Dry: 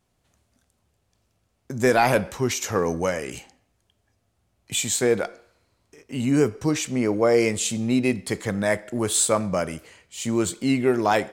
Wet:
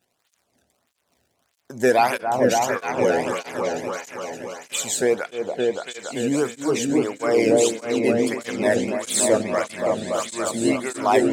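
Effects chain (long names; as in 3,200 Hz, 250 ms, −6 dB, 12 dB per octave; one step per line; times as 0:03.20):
echo whose low-pass opens from repeat to repeat 285 ms, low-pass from 750 Hz, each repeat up 1 octave, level 0 dB
surface crackle 110 per second −51 dBFS
through-zero flanger with one copy inverted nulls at 1.6 Hz, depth 1 ms
level +2.5 dB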